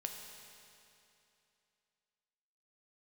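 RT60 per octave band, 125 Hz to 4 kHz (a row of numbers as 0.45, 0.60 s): 2.8, 2.8, 2.8, 2.8, 2.8, 2.7 s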